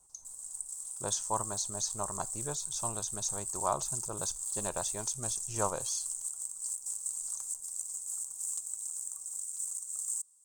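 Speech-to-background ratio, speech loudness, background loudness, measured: -1.0 dB, -37.0 LUFS, -36.0 LUFS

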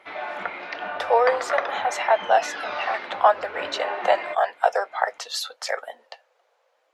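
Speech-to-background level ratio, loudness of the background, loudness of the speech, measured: 7.0 dB, -31.0 LUFS, -24.0 LUFS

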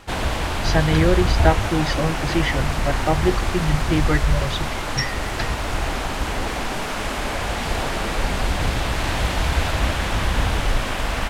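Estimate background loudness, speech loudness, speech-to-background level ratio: -23.5 LUFS, -24.0 LUFS, -0.5 dB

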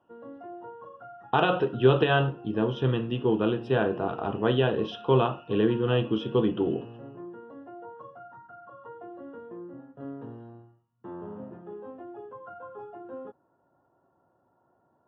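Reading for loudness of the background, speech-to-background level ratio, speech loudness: -44.5 LUFS, 18.5 dB, -26.0 LUFS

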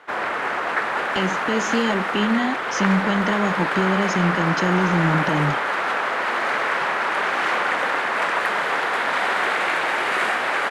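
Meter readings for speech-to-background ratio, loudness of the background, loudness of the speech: -1.0 dB, -22.0 LUFS, -23.0 LUFS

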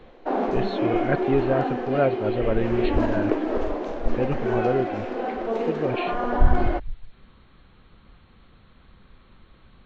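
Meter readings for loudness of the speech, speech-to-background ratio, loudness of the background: -27.5 LUFS, -1.0 dB, -26.5 LUFS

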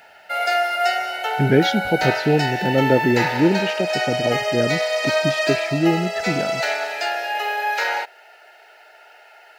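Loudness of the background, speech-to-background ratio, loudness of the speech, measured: -22.0 LUFS, 0.5 dB, -21.5 LUFS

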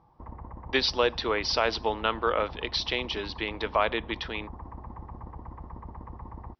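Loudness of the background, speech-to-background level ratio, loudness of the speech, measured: -44.0 LUFS, 15.5 dB, -28.5 LUFS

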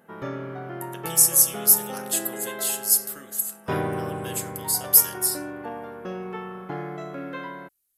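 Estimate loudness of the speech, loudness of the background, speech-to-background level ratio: -20.0 LUFS, -34.0 LUFS, 14.0 dB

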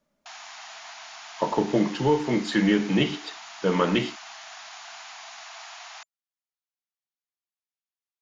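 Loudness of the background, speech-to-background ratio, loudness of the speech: -41.0 LUFS, 16.5 dB, -24.5 LUFS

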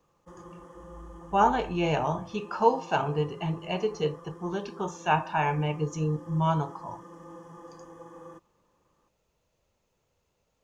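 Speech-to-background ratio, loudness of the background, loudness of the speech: 19.5 dB, -48.0 LUFS, -28.5 LUFS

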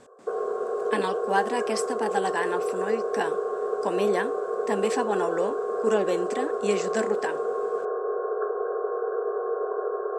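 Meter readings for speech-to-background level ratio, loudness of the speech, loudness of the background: -0.5 dB, -29.5 LUFS, -29.0 LUFS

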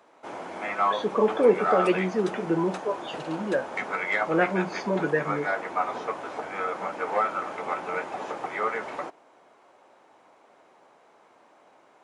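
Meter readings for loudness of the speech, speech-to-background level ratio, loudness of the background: -26.5 LUFS, 4.0 dB, -30.5 LUFS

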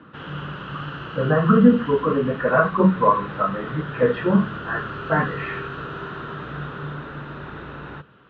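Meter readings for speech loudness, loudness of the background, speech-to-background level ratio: -20.5 LUFS, -33.5 LUFS, 13.0 dB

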